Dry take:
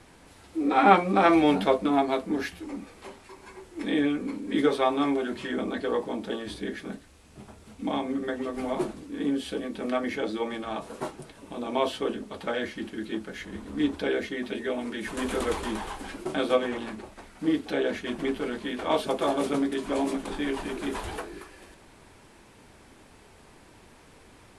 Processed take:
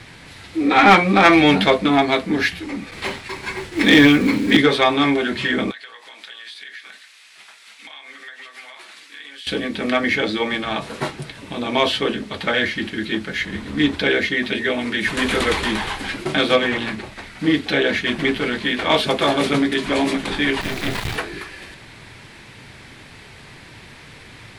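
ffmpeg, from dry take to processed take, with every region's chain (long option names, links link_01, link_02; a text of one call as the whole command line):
ffmpeg -i in.wav -filter_complex "[0:a]asettb=1/sr,asplit=3[link_01][link_02][link_03];[link_01]atrim=end=2.914[link_04];[link_02]atrim=start=2.91:end=4.57,asetpts=PTS-STARTPTS,afade=type=in:duration=0.004:curve=qsin,afade=type=out:start_time=1.656:duration=0.004:curve=qsin,agate=range=-33dB:threshold=-49dB:ratio=3:release=100:detection=peak,acontrast=84,acrusher=bits=7:mode=log:mix=0:aa=0.000001[link_05];[link_03]atrim=start=4.566[link_06];[link_04][link_05]acrossfade=duration=0.004:curve1=hsin:curve2=qsin[link_07];[link_07][link_06]acrossfade=duration=0.004:curve1=qsin:curve2=hsin,asettb=1/sr,asplit=3[link_08][link_09][link_10];[link_08]atrim=end=5.714[link_11];[link_09]atrim=start=5.71:end=9.47,asetpts=PTS-STARTPTS,afade=type=in:duration=0.004:curve=qsin,afade=type=out:start_time=3.756:duration=0.004:curve=qsin,highpass=1400,acompressor=threshold=-49dB:ratio=8:attack=3.2:release=140:knee=1:detection=peak[link_12];[link_10]atrim=start=9.466[link_13];[link_11][link_12]acrossfade=duration=0.004:curve1=hsin:curve2=qsin[link_14];[link_14][link_13]acrossfade=duration=0.004:curve1=qsin:curve2=hsin,asettb=1/sr,asplit=3[link_15][link_16][link_17];[link_15]atrim=end=20.614[link_18];[link_16]atrim=start=20.61:end=21.16,asetpts=PTS-STARTPTS,afade=type=in:duration=0.004:curve=qsin,afade=type=out:start_time=0.546:duration=0.004:curve=qsin,equalizer=frequency=100:width=0.48:gain=6.5,acrusher=bits=4:dc=4:mix=0:aa=0.000001[link_19];[link_17]atrim=start=21.156[link_20];[link_18][link_19]acrossfade=duration=0.004:curve1=hsin:curve2=qsin[link_21];[link_21][link_20]acrossfade=duration=0.004:curve1=qsin:curve2=hsin,equalizer=frequency=125:width_type=o:width=1:gain=11,equalizer=frequency=2000:width_type=o:width=1:gain=10,equalizer=frequency=4000:width_type=o:width=1:gain=9,acontrast=78,volume=-1dB" out.wav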